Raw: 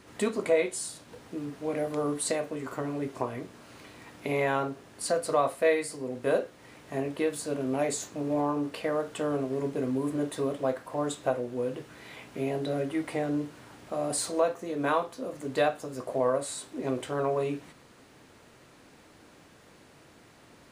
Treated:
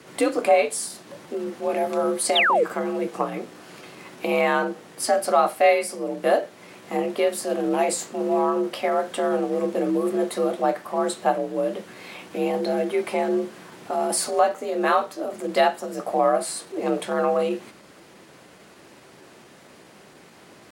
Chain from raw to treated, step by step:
sound drawn into the spectrogram fall, 0:02.36–0:02.65, 340–3,700 Hz −25 dBFS
pitch shifter +1 semitone
frequency shifter +52 Hz
level +6.5 dB

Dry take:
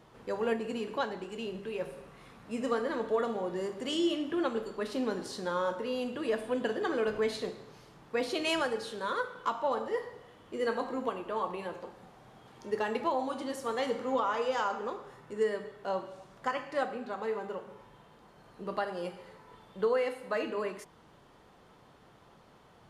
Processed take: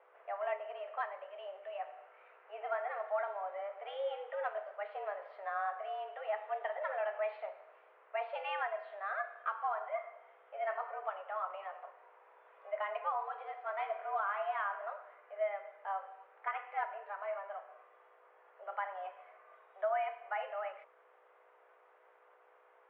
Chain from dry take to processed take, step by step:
mains hum 60 Hz, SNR 11 dB
single-sideband voice off tune +200 Hz 350–2,400 Hz
level −5 dB

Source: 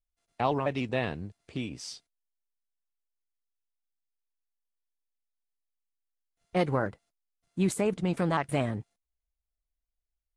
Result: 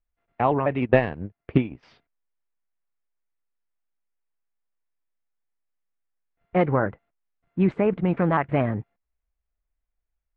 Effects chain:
low-pass filter 2,300 Hz 24 dB per octave
0:00.82–0:01.83: transient designer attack +12 dB, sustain −11 dB
level +6 dB

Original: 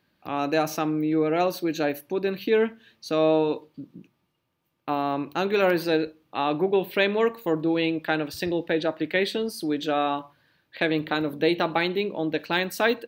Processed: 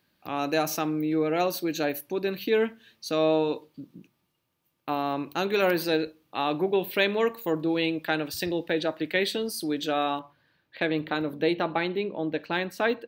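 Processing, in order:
high-shelf EQ 4,500 Hz +8.5 dB, from 0:10.19 −4 dB, from 0:11.53 −10 dB
level −2.5 dB

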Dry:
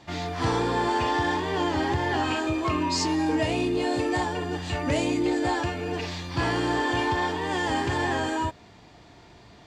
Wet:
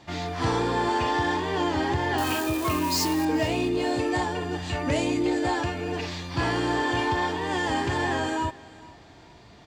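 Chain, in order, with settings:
0:02.18–0:03.25: spike at every zero crossing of −25 dBFS
on a send: repeating echo 438 ms, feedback 30%, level −21 dB

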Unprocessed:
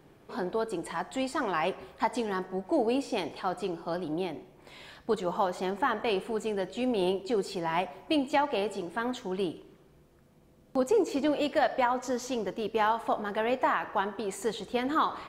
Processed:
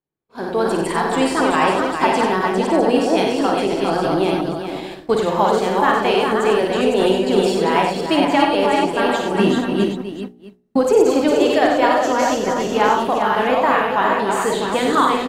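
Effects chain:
delay that plays each chunk backwards 267 ms, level −3.5 dB
multi-tap delay 53/94/405/654 ms −5.5/−6/−6/−9.5 dB
downward expander −33 dBFS
0:09.39–0:10.79: hollow resonant body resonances 210/1,900/2,700/3,900 Hz, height 11 dB
automatic gain control gain up to 13.5 dB
hum removal 59.89 Hz, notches 14
level −1 dB

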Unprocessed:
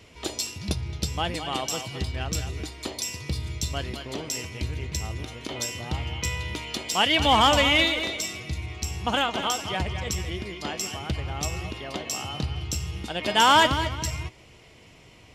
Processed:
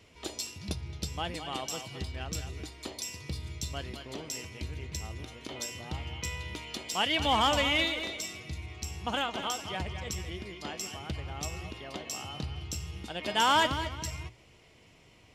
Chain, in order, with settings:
mains-hum notches 60/120 Hz
level −7 dB

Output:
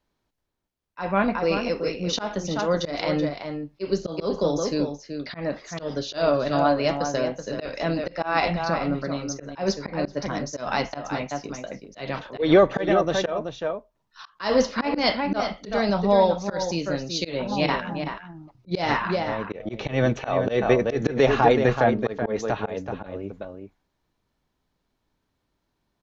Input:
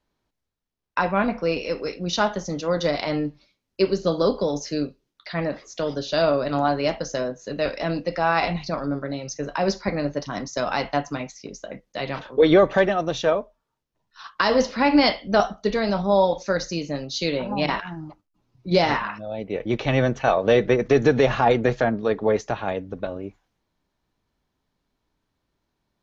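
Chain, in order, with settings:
slap from a distant wall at 65 metres, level −7 dB
volume swells 147 ms

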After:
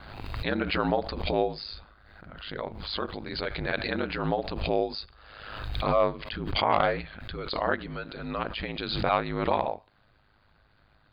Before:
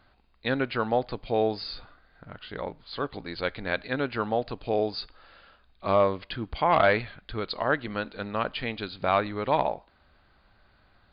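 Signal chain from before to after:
ring modulation 52 Hz
background raised ahead of every attack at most 42 dB per second

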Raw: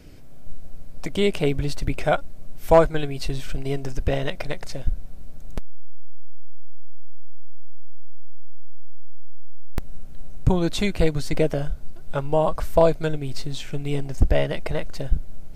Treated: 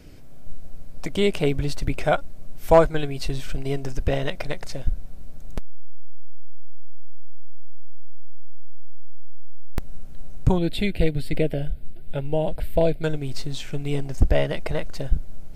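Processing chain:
0:10.58–0:13.04: phaser with its sweep stopped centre 2,700 Hz, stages 4

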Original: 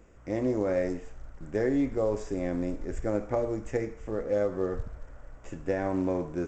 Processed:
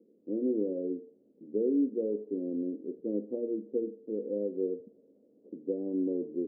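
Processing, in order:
Chebyshev band-pass filter 210–470 Hz, order 3

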